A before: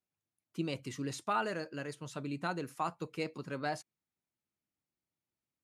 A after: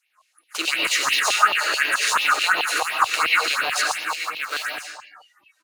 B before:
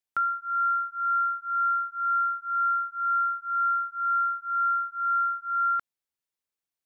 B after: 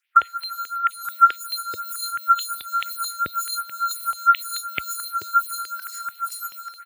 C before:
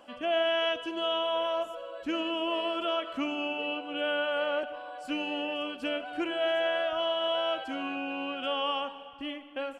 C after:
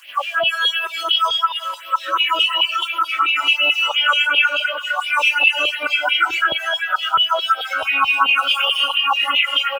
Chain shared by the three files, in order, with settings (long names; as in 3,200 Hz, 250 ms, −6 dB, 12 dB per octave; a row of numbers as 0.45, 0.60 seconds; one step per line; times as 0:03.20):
compressor on every frequency bin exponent 0.6
on a send: single-tap delay 888 ms −10 dB
on the sum: brickwall limiter −21.5 dBFS
in parallel at −10 dB: comparator with hysteresis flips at −43 dBFS
on the sum: comb and all-pass reverb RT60 1.1 s, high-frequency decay 0.95×, pre-delay 65 ms, DRR −0.5 dB
auto-filter high-pass saw down 4.6 Hz 980–3,000 Hz
noise reduction from a noise print of the clip's start 20 dB
high-pass filter 60 Hz 24 dB per octave
downward compressor 2.5 to 1, threshold −32 dBFS
all-pass phaser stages 4, 2.8 Hz, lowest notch 140–1,400 Hz
normalise the peak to −3 dBFS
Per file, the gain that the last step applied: +19.5, +19.0, +19.0 decibels